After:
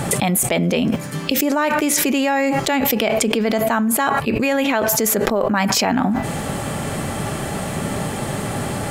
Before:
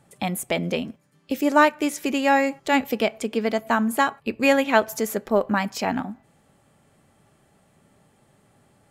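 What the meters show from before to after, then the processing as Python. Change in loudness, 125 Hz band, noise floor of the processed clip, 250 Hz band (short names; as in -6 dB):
+3.5 dB, +12.5 dB, -26 dBFS, +5.5 dB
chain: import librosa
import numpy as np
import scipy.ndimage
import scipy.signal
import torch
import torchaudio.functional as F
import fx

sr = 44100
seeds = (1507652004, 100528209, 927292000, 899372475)

y = fx.env_flatten(x, sr, amount_pct=100)
y = y * 10.0 ** (-4.5 / 20.0)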